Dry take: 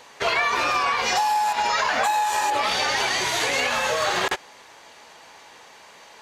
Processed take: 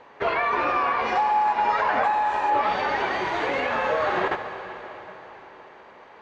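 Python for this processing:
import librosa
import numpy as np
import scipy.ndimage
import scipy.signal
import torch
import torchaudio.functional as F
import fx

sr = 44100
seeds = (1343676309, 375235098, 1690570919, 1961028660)

y = scipy.signal.sosfilt(scipy.signal.butter(2, 1700.0, 'lowpass', fs=sr, output='sos'), x)
y = fx.peak_eq(y, sr, hz=340.0, db=3.5, octaves=0.77)
y = fx.rev_plate(y, sr, seeds[0], rt60_s=4.2, hf_ratio=0.95, predelay_ms=0, drr_db=7.0)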